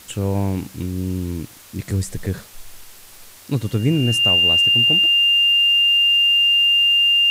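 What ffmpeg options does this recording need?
ffmpeg -i in.wav -af "adeclick=threshold=4,bandreject=frequency=2800:width=30,afwtdn=0.0071" out.wav

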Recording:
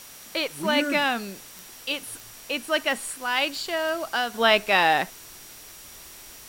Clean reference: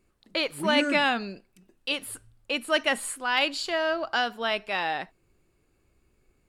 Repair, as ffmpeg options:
ffmpeg -i in.wav -af "adeclick=threshold=4,bandreject=frequency=5700:width=30,afwtdn=0.0063,asetnsamples=nb_out_samples=441:pad=0,asendcmd='4.34 volume volume -9dB',volume=0dB" out.wav

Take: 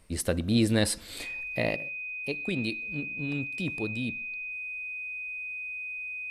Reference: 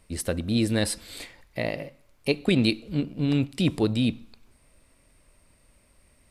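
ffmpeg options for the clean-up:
ffmpeg -i in.wav -af "bandreject=frequency=2500:width=30,asetnsamples=nb_out_samples=441:pad=0,asendcmd='1.76 volume volume 10dB',volume=0dB" out.wav

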